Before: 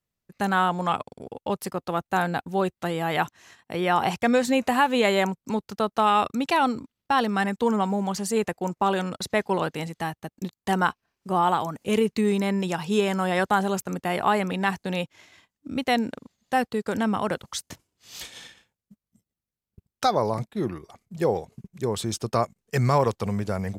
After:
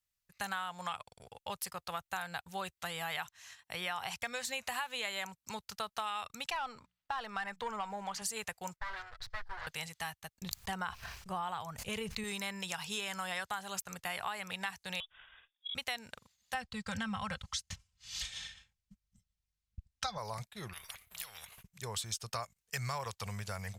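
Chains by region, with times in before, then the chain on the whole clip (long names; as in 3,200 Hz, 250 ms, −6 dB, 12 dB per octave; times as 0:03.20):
0:06.50–0:08.22: mains-hum notches 60/120/180 Hz + mid-hump overdrive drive 12 dB, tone 1,000 Hz, clips at −10 dBFS
0:08.76–0:09.67: lower of the sound and its delayed copy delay 8.3 ms + drawn EQ curve 110 Hz 0 dB, 190 Hz −20 dB, 370 Hz −10 dB, 910 Hz −8 dB, 1,700 Hz −3 dB, 2,700 Hz −14 dB, 4,300 Hz −10 dB, 8,800 Hz −25 dB
0:10.41–0:12.24: spectral tilt −2 dB per octave + level that may fall only so fast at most 77 dB per second
0:15.00–0:15.75: voice inversion scrambler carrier 3,600 Hz + downward compressor 5 to 1, threshold −36 dBFS
0:16.54–0:20.18: low-pass filter 6,800 Hz + low shelf with overshoot 230 Hz +12.5 dB, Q 1.5 + comb filter 3.8 ms, depth 58%
0:20.73–0:21.63: flat-topped bell 6,100 Hz −12 dB 1.1 octaves + downward compressor 5 to 1, threshold −31 dBFS + every bin compressed towards the loudest bin 4 to 1
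whole clip: guitar amp tone stack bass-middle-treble 10-0-10; downward compressor 6 to 1, threshold −36 dBFS; level +1.5 dB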